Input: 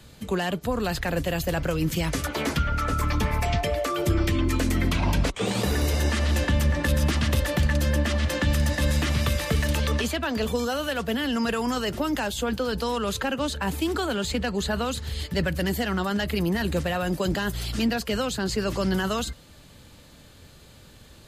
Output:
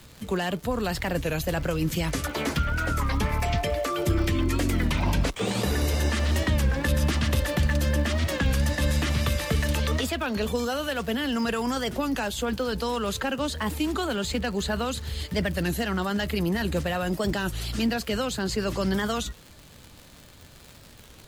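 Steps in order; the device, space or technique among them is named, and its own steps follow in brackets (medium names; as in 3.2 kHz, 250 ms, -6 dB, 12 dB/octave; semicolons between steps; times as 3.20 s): warped LP (warped record 33 1/3 rpm, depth 160 cents; crackle 140 per s -34 dBFS; pink noise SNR 34 dB); trim -1 dB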